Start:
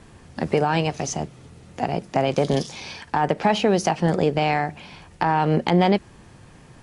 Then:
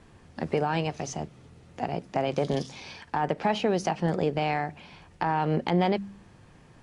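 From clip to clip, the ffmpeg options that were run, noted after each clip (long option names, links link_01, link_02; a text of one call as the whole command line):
ffmpeg -i in.wav -af "highshelf=frequency=8200:gain=-9,bandreject=frequency=66.08:width_type=h:width=4,bandreject=frequency=132.16:width_type=h:width=4,bandreject=frequency=198.24:width_type=h:width=4,bandreject=frequency=264.32:width_type=h:width=4,volume=-6dB" out.wav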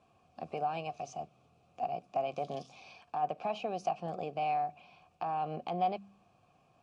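ffmpeg -i in.wav -filter_complex "[0:a]asplit=3[link_01][link_02][link_03];[link_01]bandpass=frequency=730:width_type=q:width=8,volume=0dB[link_04];[link_02]bandpass=frequency=1090:width_type=q:width=8,volume=-6dB[link_05];[link_03]bandpass=frequency=2440:width_type=q:width=8,volume=-9dB[link_06];[link_04][link_05][link_06]amix=inputs=3:normalize=0,bass=frequency=250:gain=14,treble=frequency=4000:gain=15" out.wav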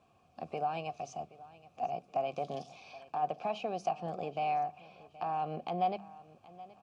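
ffmpeg -i in.wav -af "aecho=1:1:774|1548|2322:0.112|0.0393|0.0137" out.wav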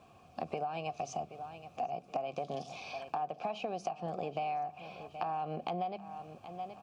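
ffmpeg -i in.wav -af "acompressor=threshold=-41dB:ratio=10,volume=8dB" out.wav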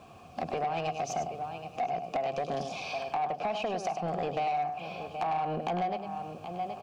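ffmpeg -i in.wav -af "aecho=1:1:101:0.376,asoftclip=type=tanh:threshold=-32dB,volume=7.5dB" out.wav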